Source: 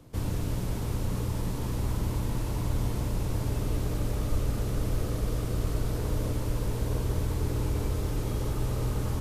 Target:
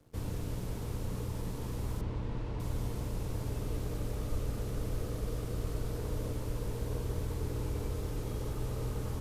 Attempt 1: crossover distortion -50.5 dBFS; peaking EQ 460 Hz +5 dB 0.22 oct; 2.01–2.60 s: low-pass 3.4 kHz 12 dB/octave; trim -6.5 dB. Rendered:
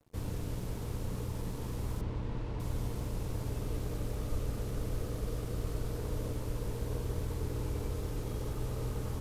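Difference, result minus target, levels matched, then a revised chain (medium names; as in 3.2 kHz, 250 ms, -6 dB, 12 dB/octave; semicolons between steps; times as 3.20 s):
crossover distortion: distortion +6 dB
crossover distortion -57 dBFS; peaking EQ 460 Hz +5 dB 0.22 oct; 2.01–2.60 s: low-pass 3.4 kHz 12 dB/octave; trim -6.5 dB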